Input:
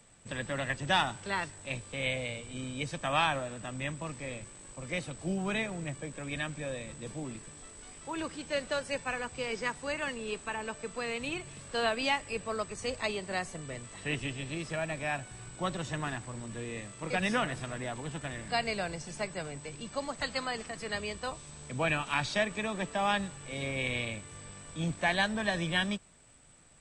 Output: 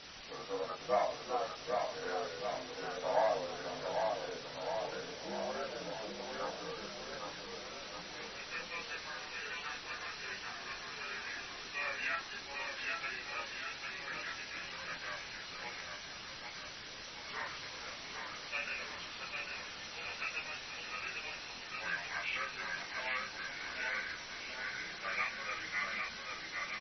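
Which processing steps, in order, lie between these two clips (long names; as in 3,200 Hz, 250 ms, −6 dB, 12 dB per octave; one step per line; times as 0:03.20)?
partials spread apart or drawn together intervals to 81%
0:15.80–0:17.30: resonances in every octave C#, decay 0.23 s
band-pass filter sweep 650 Hz → 2,500 Hz, 0:06.23–0:07.89
in parallel at −10 dB: bit-depth reduction 6 bits, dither triangular
on the sum: multi-voice chorus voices 2, 0.14 Hz, delay 27 ms, depth 4 ms
on a send: bouncing-ball delay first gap 800 ms, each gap 0.9×, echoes 5
on the sum: level +3.5 dB
MP3 24 kbit/s 24,000 Hz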